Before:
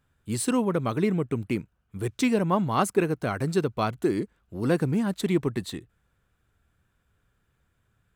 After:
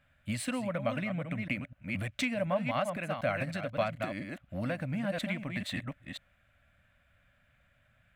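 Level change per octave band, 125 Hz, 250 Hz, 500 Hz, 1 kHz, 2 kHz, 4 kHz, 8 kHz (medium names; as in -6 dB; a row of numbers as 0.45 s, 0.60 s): -7.5 dB, -9.5 dB, -7.5 dB, -7.5 dB, 0.0 dB, -2.5 dB, -10.0 dB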